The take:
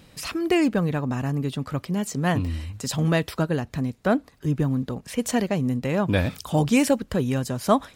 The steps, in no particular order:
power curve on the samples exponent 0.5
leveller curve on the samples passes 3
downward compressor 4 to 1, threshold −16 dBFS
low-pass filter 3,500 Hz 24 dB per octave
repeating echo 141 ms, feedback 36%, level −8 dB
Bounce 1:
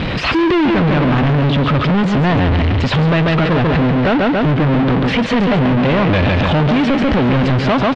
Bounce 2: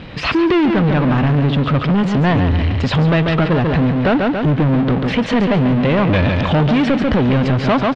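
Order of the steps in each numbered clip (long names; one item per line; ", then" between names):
repeating echo, then power curve on the samples, then downward compressor, then leveller curve on the samples, then low-pass filter
leveller curve on the samples, then repeating echo, then downward compressor, then power curve on the samples, then low-pass filter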